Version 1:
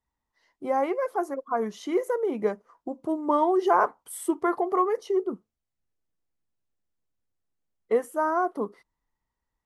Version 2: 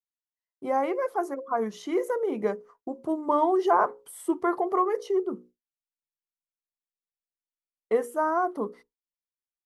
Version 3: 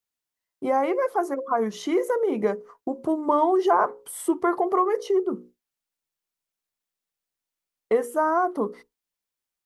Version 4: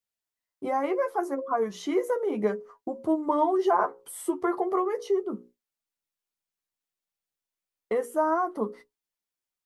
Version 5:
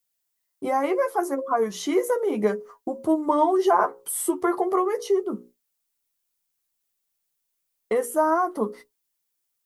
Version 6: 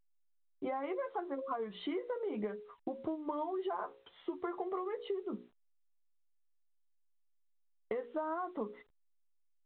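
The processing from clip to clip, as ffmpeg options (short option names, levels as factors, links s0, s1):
-filter_complex "[0:a]bandreject=f=60:t=h:w=6,bandreject=f=120:t=h:w=6,bandreject=f=180:t=h:w=6,bandreject=f=240:t=h:w=6,bandreject=f=300:t=h:w=6,bandreject=f=360:t=h:w=6,bandreject=f=420:t=h:w=6,bandreject=f=480:t=h:w=6,bandreject=f=540:t=h:w=6,agate=range=0.0224:threshold=0.00501:ratio=3:detection=peak,acrossover=split=1600[s0][s1];[s1]alimiter=level_in=3.35:limit=0.0631:level=0:latency=1:release=105,volume=0.299[s2];[s0][s2]amix=inputs=2:normalize=0"
-af "acompressor=threshold=0.0178:ratio=1.5,volume=2.51"
-af "flanger=delay=9.2:depth=1.9:regen=31:speed=0.35:shape=sinusoidal"
-af "crystalizer=i=1.5:c=0,volume=1.5"
-af "acompressor=threshold=0.0447:ratio=12,anlmdn=0.00158,volume=0.447" -ar 8000 -c:a pcm_alaw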